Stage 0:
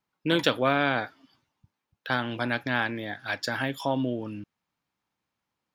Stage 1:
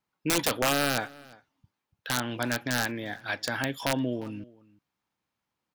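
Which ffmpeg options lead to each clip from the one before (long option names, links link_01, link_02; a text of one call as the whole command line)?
ffmpeg -i in.wav -filter_complex "[0:a]aeval=exprs='(mod(5.96*val(0)+1,2)-1)/5.96':channel_layout=same,asplit=2[link_01][link_02];[link_02]adelay=349.9,volume=-22dB,highshelf=frequency=4000:gain=-7.87[link_03];[link_01][link_03]amix=inputs=2:normalize=0,volume=-1dB" out.wav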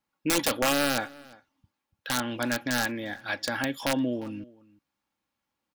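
ffmpeg -i in.wav -af "aecho=1:1:3.6:0.38" out.wav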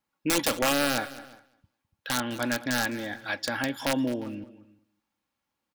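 ffmpeg -i in.wav -af "aecho=1:1:208|416:0.141|0.0212" out.wav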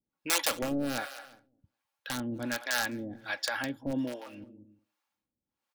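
ffmpeg -i in.wav -filter_complex "[0:a]acrossover=split=510[link_01][link_02];[link_01]aeval=exprs='val(0)*(1-1/2+1/2*cos(2*PI*1.3*n/s))':channel_layout=same[link_03];[link_02]aeval=exprs='val(0)*(1-1/2-1/2*cos(2*PI*1.3*n/s))':channel_layout=same[link_04];[link_03][link_04]amix=inputs=2:normalize=0" out.wav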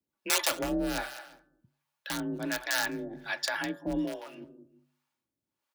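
ffmpeg -i in.wav -af "bandreject=frequency=106.2:width_type=h:width=4,bandreject=frequency=212.4:width_type=h:width=4,bandreject=frequency=318.6:width_type=h:width=4,bandreject=frequency=424.8:width_type=h:width=4,bandreject=frequency=531:width_type=h:width=4,bandreject=frequency=637.2:width_type=h:width=4,bandreject=frequency=743.4:width_type=h:width=4,bandreject=frequency=849.6:width_type=h:width=4,bandreject=frequency=955.8:width_type=h:width=4,bandreject=frequency=1062:width_type=h:width=4,bandreject=frequency=1168.2:width_type=h:width=4,bandreject=frequency=1274.4:width_type=h:width=4,bandreject=frequency=1380.6:width_type=h:width=4,bandreject=frequency=1486.8:width_type=h:width=4,bandreject=frequency=1593:width_type=h:width=4,bandreject=frequency=1699.2:width_type=h:width=4,bandreject=frequency=1805.4:width_type=h:width=4,afreqshift=38,volume=1dB" out.wav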